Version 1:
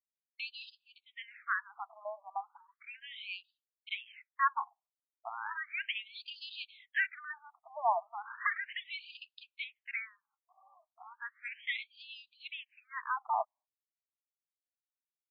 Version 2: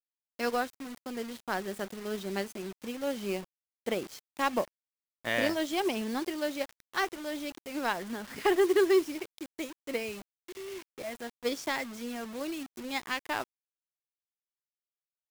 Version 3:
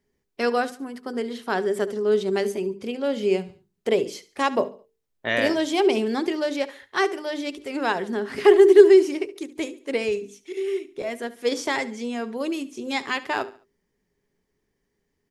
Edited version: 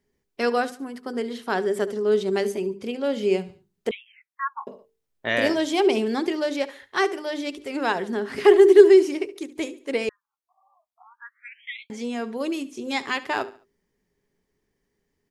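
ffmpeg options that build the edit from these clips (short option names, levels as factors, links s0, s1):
-filter_complex "[0:a]asplit=2[s0][s1];[2:a]asplit=3[s2][s3][s4];[s2]atrim=end=3.912[s5];[s0]atrim=start=3.908:end=4.672[s6];[s3]atrim=start=4.668:end=10.092[s7];[s1]atrim=start=10.088:end=11.902[s8];[s4]atrim=start=11.898[s9];[s5][s6]acrossfade=d=0.004:c1=hsin:c2=hsin[s10];[s10][s7]acrossfade=d=0.004:c1=hsin:c2=hsin[s11];[s11][s8]acrossfade=d=0.004:c1=hsin:c2=hsin[s12];[s12][s9]acrossfade=d=0.004:c1=hsin:c2=hsin"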